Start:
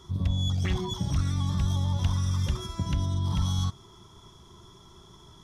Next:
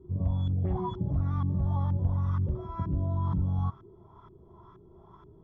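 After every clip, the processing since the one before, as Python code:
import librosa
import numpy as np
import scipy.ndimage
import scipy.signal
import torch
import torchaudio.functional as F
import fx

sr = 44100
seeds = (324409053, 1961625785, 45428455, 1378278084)

y = fx.filter_lfo_lowpass(x, sr, shape='saw_up', hz=2.1, low_hz=320.0, high_hz=1500.0, q=2.5)
y = fx.hpss(y, sr, part='harmonic', gain_db=5)
y = y * 10.0 ** (-6.0 / 20.0)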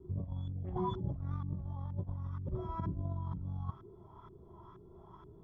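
y = fx.over_compress(x, sr, threshold_db=-31.0, ratio=-0.5)
y = fx.wow_flutter(y, sr, seeds[0], rate_hz=2.1, depth_cents=26.0)
y = y * 10.0 ** (-5.5 / 20.0)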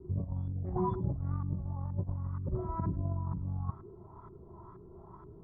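y = np.convolve(x, np.full(14, 1.0 / 14))[:len(x)]
y = y + 10.0 ** (-21.5 / 20.0) * np.pad(y, (int(104 * sr / 1000.0), 0))[:len(y)]
y = y * 10.0 ** (4.0 / 20.0)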